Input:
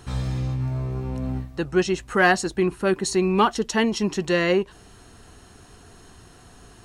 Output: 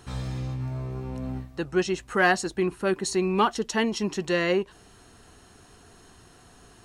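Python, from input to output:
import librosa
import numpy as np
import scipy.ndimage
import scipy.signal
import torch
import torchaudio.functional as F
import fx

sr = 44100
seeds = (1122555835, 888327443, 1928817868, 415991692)

y = fx.low_shelf(x, sr, hz=140.0, db=-4.5)
y = y * librosa.db_to_amplitude(-3.0)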